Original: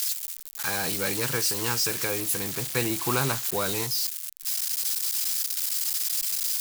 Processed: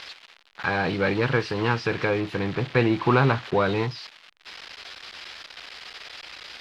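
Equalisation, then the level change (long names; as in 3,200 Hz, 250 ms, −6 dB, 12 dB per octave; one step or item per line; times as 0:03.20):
low-pass filter 4,900 Hz 12 dB per octave
high-frequency loss of the air 370 metres
+8.5 dB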